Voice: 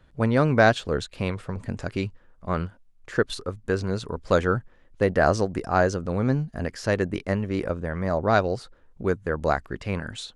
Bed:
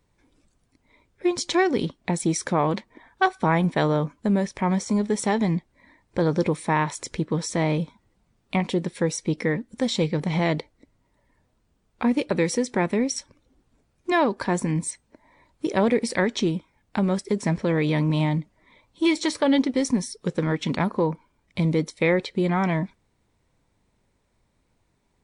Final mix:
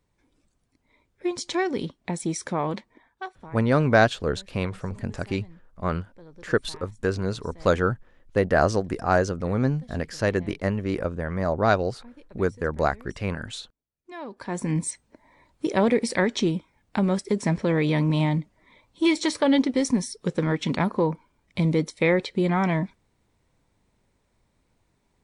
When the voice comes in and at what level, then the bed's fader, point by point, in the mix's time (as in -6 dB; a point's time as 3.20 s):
3.35 s, 0.0 dB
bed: 2.90 s -4.5 dB
3.61 s -26.5 dB
13.91 s -26.5 dB
14.73 s 0 dB